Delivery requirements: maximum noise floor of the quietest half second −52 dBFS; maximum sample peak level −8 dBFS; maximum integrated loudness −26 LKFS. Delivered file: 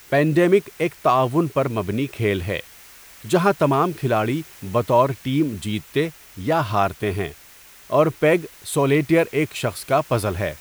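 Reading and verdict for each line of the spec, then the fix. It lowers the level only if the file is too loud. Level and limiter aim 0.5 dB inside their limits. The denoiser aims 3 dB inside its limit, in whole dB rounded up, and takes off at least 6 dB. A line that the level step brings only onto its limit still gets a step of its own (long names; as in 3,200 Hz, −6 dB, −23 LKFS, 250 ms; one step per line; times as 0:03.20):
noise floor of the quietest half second −47 dBFS: out of spec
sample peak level −4.0 dBFS: out of spec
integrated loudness −21.0 LKFS: out of spec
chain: level −5.5 dB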